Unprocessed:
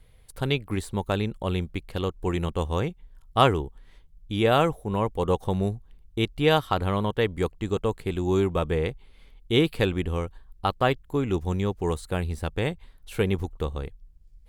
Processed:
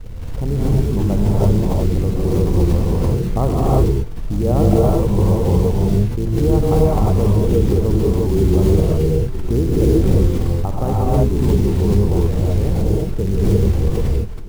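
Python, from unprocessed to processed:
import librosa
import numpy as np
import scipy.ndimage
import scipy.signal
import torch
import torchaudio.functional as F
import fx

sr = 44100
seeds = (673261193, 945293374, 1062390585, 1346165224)

p1 = fx.octave_divider(x, sr, octaves=2, level_db=0.0)
p2 = scipy.signal.sosfilt(scipy.signal.cheby2(4, 60, 3600.0, 'lowpass', fs=sr, output='sos'), p1)
p3 = fx.tilt_shelf(p2, sr, db=8.5, hz=770.0)
p4 = fx.over_compress(p3, sr, threshold_db=-23.0, ratio=-0.5)
p5 = p3 + (p4 * librosa.db_to_amplitude(1.0))
p6 = fx.quant_companded(p5, sr, bits=6)
p7 = p6 + fx.echo_single(p6, sr, ms=933, db=-23.0, dry=0)
p8 = fx.rev_gated(p7, sr, seeds[0], gate_ms=380, shape='rising', drr_db=-5.0)
p9 = fx.pre_swell(p8, sr, db_per_s=27.0)
y = p9 * librosa.db_to_amplitude(-6.5)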